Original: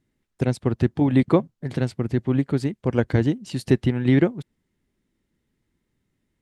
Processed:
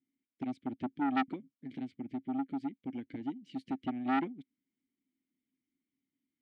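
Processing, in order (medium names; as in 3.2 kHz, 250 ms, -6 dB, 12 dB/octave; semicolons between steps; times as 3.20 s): 1.30–3.80 s: compression 6:1, threshold -19 dBFS, peak gain reduction 8 dB; vowel filter i; transformer saturation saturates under 1.2 kHz; trim -4 dB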